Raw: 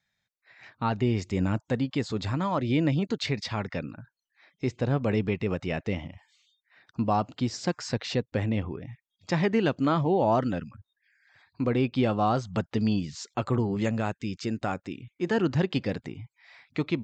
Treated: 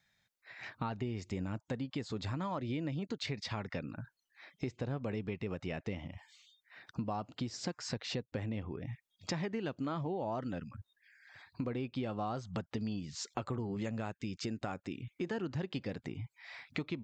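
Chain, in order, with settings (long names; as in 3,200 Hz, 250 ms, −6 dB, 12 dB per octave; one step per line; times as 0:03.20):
downward compressor 5 to 1, threshold −40 dBFS, peak gain reduction 18 dB
level +3.5 dB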